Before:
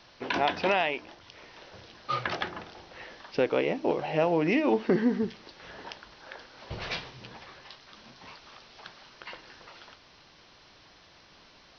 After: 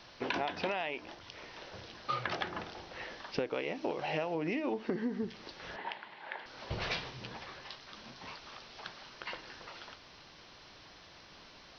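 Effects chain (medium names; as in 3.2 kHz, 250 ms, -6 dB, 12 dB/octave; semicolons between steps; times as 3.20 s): 3.54–4.35 s: tilt shelf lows -3.5 dB; compression 8:1, threshold -32 dBFS, peak gain reduction 13 dB; 5.76–6.46 s: cabinet simulation 210–3400 Hz, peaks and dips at 280 Hz -7 dB, 500 Hz -6 dB, 880 Hz +6 dB, 1.3 kHz -5 dB, 2 kHz +6 dB; trim +1 dB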